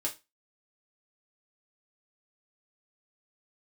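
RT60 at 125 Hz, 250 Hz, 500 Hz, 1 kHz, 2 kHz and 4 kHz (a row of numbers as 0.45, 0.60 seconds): 0.25, 0.25, 0.25, 0.25, 0.25, 0.25 seconds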